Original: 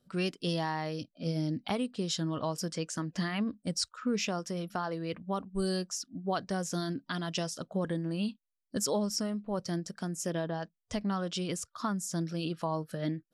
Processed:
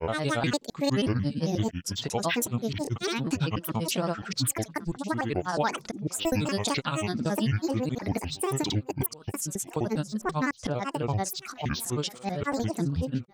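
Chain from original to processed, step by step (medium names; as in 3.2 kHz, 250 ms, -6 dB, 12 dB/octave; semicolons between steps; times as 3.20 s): slices played last to first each 233 ms, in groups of 4; thinning echo 1064 ms, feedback 32%, high-pass 420 Hz, level -18.5 dB; granulator 100 ms, grains 18 per s, pitch spread up and down by 12 st; trim +6.5 dB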